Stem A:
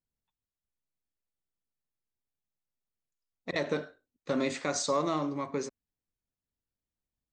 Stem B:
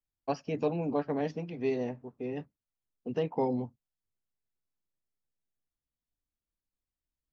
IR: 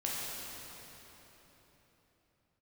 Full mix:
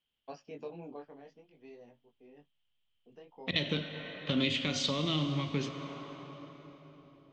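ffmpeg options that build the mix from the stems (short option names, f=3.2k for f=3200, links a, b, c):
-filter_complex "[0:a]asubboost=boost=7.5:cutoff=140,lowpass=f=3.1k:t=q:w=12,volume=2.5dB,asplit=2[a][b];[b]volume=-12dB[c];[1:a]flanger=delay=17.5:depth=5.7:speed=0.52,volume=-7.5dB,afade=t=out:st=0.84:d=0.31:silence=0.375837[d];[2:a]atrim=start_sample=2205[e];[c][e]afir=irnorm=-1:irlink=0[f];[a][d][f]amix=inputs=3:normalize=0,lowshelf=f=170:g=-11,acrossover=split=400|3000[g][h][i];[h]acompressor=threshold=-42dB:ratio=6[j];[g][j][i]amix=inputs=3:normalize=0"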